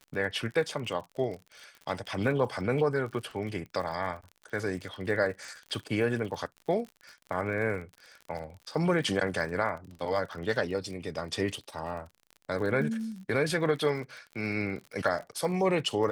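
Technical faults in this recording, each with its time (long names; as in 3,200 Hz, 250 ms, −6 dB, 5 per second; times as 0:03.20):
surface crackle 43 per second −38 dBFS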